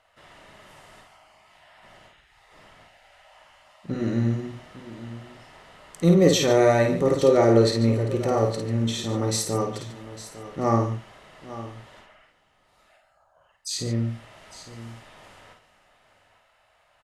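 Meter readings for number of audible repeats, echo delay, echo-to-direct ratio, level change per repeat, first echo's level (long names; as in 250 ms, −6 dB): 5, 52 ms, −3.5 dB, repeats not evenly spaced, −4.5 dB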